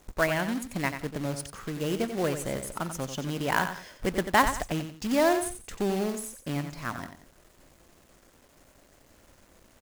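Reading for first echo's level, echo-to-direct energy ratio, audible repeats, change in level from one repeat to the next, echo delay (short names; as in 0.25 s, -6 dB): -9.0 dB, -8.5 dB, 2, -10.0 dB, 90 ms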